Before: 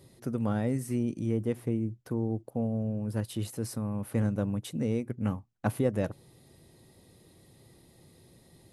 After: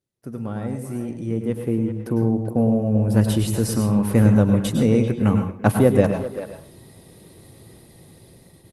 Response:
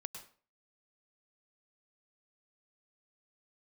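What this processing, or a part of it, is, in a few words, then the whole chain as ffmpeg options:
speakerphone in a meeting room: -filter_complex "[1:a]atrim=start_sample=2205[a];[0:a][a]afir=irnorm=-1:irlink=0,asplit=2[b][c];[c]adelay=390,highpass=300,lowpass=3.4k,asoftclip=type=hard:threshold=-26.5dB,volume=-11dB[d];[b][d]amix=inputs=2:normalize=0,dynaudnorm=f=750:g=5:m=13dB,agate=range=-28dB:threshold=-52dB:ratio=16:detection=peak,volume=3dB" -ar 48000 -c:a libopus -b:a 32k

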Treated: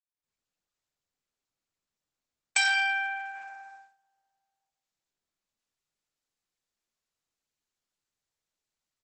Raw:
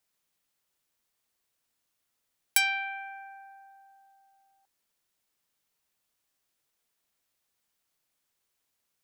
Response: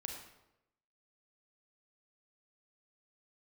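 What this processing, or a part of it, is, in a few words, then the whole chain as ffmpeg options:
speakerphone in a meeting room: -filter_complex "[0:a]asettb=1/sr,asplit=3[a][b][c];[a]atrim=end=2.574[d];[b]atrim=start=2.57:end=3.94,asetpts=PTS-STARTPTS,afade=t=in:d=0.004:c=qsin,afade=t=out:st=1.366:d=0.004:c=qsin,adynamicequalizer=threshold=0.00501:dfrequency=1200:dqfactor=2.3:tfrequency=1200:tqfactor=2.3:attack=5:release=100:ratio=0.375:range=3:mode=boostabove:tftype=bell[e];[c]atrim=start=3.936[f];[d][e]acrossfade=d=0.004:c1=hsin:c2=qsin[g];[g][f]acrossfade=d=0.004:c1=qsin:c2=hsin[h];[1:a]atrim=start_sample=2205[i];[h][i]afir=irnorm=-1:irlink=0,asplit=2[j][k];[k]adelay=110,highpass=300,lowpass=3.4k,asoftclip=type=hard:threshold=-20dB,volume=-25dB[l];[j][l]amix=inputs=2:normalize=0,dynaudnorm=f=100:g=5:m=12dB,agate=range=-21dB:threshold=-46dB:ratio=16:detection=peak,volume=-3dB" -ar 48000 -c:a libopus -b:a 12k

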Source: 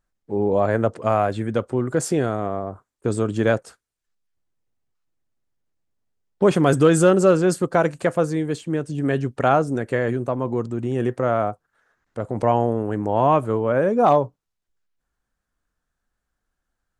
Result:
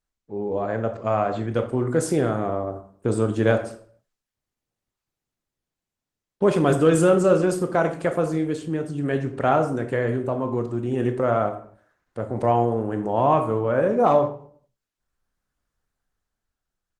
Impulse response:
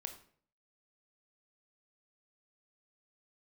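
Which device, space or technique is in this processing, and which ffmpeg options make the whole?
speakerphone in a meeting room: -filter_complex "[1:a]atrim=start_sample=2205[a];[0:a][a]afir=irnorm=-1:irlink=0,asplit=2[b][c];[c]adelay=90,highpass=300,lowpass=3.4k,asoftclip=type=hard:threshold=-15.5dB,volume=-26dB[d];[b][d]amix=inputs=2:normalize=0,dynaudnorm=f=110:g=21:m=9dB,volume=-4dB" -ar 48000 -c:a libopus -b:a 20k

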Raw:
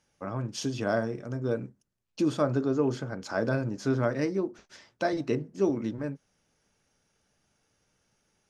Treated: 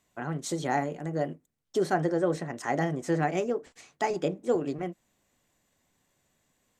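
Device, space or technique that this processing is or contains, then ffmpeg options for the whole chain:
nightcore: -af "asetrate=55125,aresample=44100"

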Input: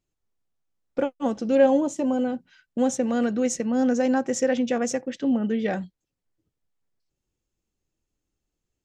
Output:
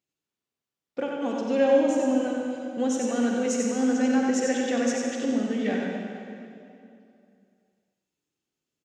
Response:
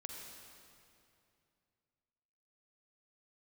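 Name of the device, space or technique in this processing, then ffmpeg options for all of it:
PA in a hall: -filter_complex "[0:a]highpass=150,equalizer=f=3.1k:t=o:w=1.8:g=5,aecho=1:1:93:0.562[a];[1:a]atrim=start_sample=2205[b];[a][b]afir=irnorm=-1:irlink=0"

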